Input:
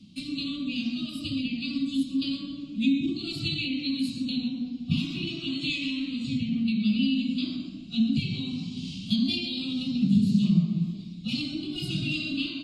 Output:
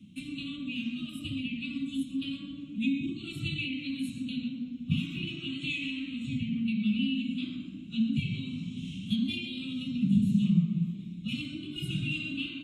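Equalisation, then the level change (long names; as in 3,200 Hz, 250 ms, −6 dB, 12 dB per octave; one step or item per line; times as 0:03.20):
high-pass filter 54 Hz
dynamic equaliser 350 Hz, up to −6 dB, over −39 dBFS, Q 1.1
phaser with its sweep stopped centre 2,000 Hz, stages 4
0.0 dB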